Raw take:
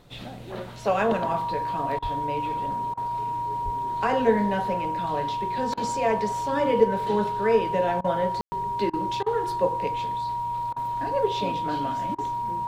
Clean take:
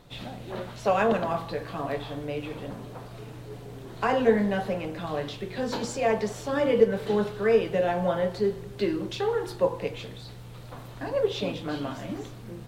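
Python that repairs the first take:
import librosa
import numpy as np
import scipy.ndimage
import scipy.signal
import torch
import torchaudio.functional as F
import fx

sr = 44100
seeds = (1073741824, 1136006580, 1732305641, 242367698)

y = fx.notch(x, sr, hz=950.0, q=30.0)
y = fx.highpass(y, sr, hz=140.0, slope=24, at=(2.02, 2.14), fade=0.02)
y = fx.highpass(y, sr, hz=140.0, slope=24, at=(3.64, 3.76), fade=0.02)
y = fx.fix_ambience(y, sr, seeds[0], print_start_s=0.0, print_end_s=0.5, start_s=8.41, end_s=8.52)
y = fx.fix_interpolate(y, sr, at_s=(1.99, 2.94, 5.74, 8.01, 8.9, 9.23, 10.73, 12.15), length_ms=32.0)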